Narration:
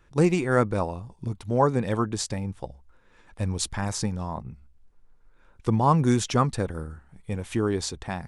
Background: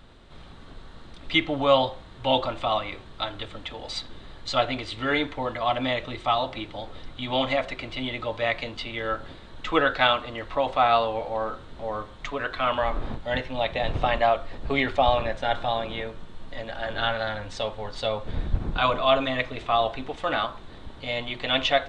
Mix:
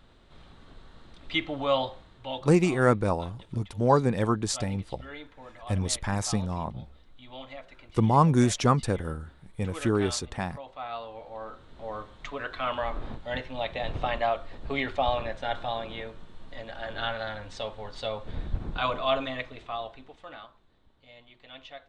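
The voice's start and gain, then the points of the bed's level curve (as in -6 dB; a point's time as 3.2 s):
2.30 s, 0.0 dB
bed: 1.97 s -6 dB
2.61 s -18.5 dB
10.72 s -18.5 dB
11.92 s -5.5 dB
19.18 s -5.5 dB
20.73 s -23 dB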